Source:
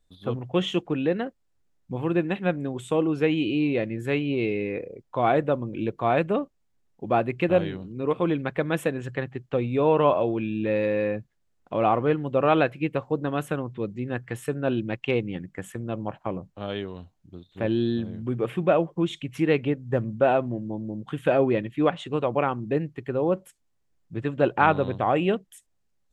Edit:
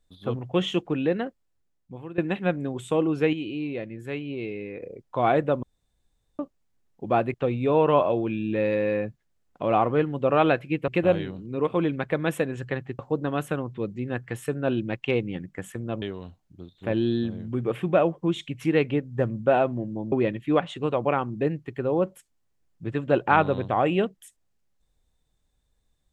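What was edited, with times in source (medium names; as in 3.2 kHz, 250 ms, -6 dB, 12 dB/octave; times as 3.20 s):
1.23–2.18 s: fade out, to -17 dB
3.33–4.82 s: gain -7 dB
5.63–6.39 s: room tone
7.34–9.45 s: move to 12.99 s
16.02–16.76 s: delete
20.86–21.42 s: delete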